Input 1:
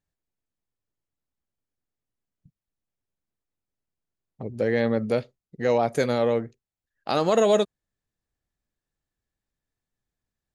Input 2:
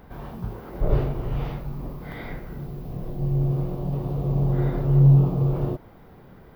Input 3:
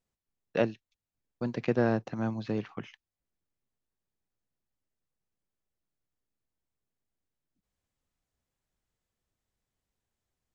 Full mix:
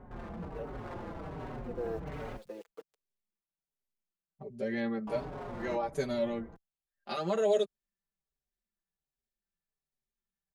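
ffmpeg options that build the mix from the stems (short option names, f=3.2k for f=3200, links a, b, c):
-filter_complex "[0:a]aecho=1:1:5.1:0.97,volume=-10dB[a];[1:a]lowpass=1.3k,acompressor=threshold=-26dB:ratio=4,aeval=exprs='0.02*(abs(mod(val(0)/0.02+3,4)-2)-1)':c=same,volume=0.5dB,asplit=3[b][c][d];[b]atrim=end=2.37,asetpts=PTS-STARTPTS,afade=t=out:st=2.366:d=0.004:c=hsin[e];[c]atrim=start=2.37:end=5.07,asetpts=PTS-STARTPTS,volume=0[f];[d]atrim=start=5.07,asetpts=PTS-STARTPTS,afade=t=in:d=0.004:c=hsin[g];[e][f][g]concat=n=3:v=0:a=1[h];[2:a]aeval=exprs='val(0)*gte(abs(val(0)),0.0119)':c=same,highpass=f=460:t=q:w=4.9,volume=-12dB,afade=t=in:st=1.73:d=0.25:silence=0.281838[i];[a][h][i]amix=inputs=3:normalize=0,asplit=2[j][k];[k]adelay=5,afreqshift=-1.3[l];[j][l]amix=inputs=2:normalize=1"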